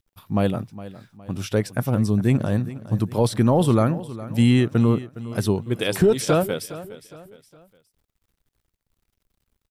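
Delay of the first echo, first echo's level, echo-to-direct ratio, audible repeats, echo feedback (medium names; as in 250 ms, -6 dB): 412 ms, -16.0 dB, -15.5 dB, 3, 39%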